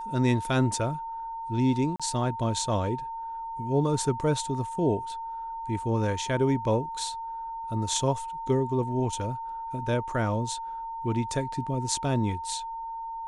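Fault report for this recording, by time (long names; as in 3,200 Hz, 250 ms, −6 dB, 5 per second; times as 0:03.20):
whistle 910 Hz −33 dBFS
0:01.96–0:02.00: drop-out 36 ms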